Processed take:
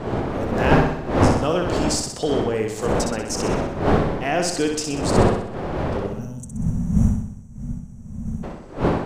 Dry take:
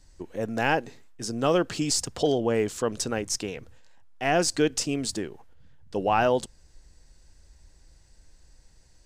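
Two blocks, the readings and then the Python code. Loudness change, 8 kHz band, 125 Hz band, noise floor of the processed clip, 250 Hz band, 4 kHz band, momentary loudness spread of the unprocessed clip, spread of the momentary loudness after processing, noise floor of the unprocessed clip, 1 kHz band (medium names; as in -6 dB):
+4.5 dB, +1.5 dB, +13.5 dB, -37 dBFS, +8.5 dB, +2.0 dB, 12 LU, 15 LU, -57 dBFS, +5.0 dB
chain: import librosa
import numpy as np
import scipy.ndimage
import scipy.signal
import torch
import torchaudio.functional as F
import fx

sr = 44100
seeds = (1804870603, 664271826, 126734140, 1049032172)

y = fx.dmg_wind(x, sr, seeds[0], corner_hz=540.0, level_db=-23.0)
y = fx.spec_box(y, sr, start_s=6.07, length_s=2.37, low_hz=240.0, high_hz=5600.0, gain_db=-27)
y = fx.room_flutter(y, sr, wall_m=10.8, rt60_s=0.71)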